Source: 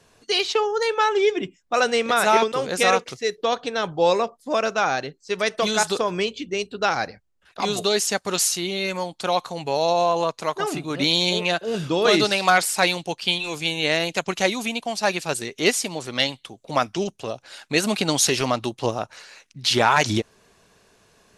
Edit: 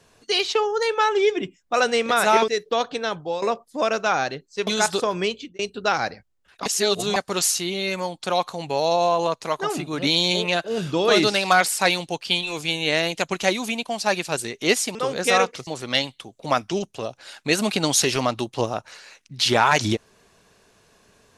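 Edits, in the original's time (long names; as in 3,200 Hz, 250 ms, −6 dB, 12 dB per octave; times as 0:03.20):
0:02.48–0:03.20: move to 0:15.92
0:03.72–0:04.14: fade out linear, to −14 dB
0:05.39–0:05.64: remove
0:06.30–0:06.56: fade out
0:07.63–0:08.13: reverse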